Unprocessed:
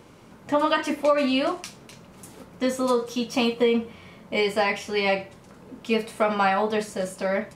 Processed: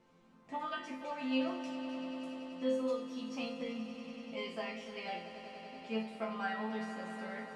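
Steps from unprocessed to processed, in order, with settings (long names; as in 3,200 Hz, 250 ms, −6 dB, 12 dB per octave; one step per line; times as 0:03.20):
high-frequency loss of the air 64 metres
resonators tuned to a chord F3 major, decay 0.38 s
echo that builds up and dies away 96 ms, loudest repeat 5, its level −14.5 dB
level +1.5 dB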